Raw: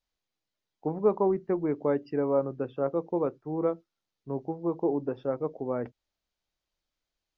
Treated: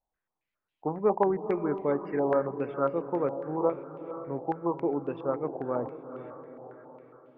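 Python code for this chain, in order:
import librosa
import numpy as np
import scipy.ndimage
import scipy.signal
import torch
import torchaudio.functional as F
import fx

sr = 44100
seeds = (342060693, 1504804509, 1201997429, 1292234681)

y = fx.echo_diffused(x, sr, ms=480, feedback_pct=51, wet_db=-10.0)
y = fx.filter_held_lowpass(y, sr, hz=7.3, low_hz=800.0, high_hz=2800.0)
y = y * 10.0 ** (-2.0 / 20.0)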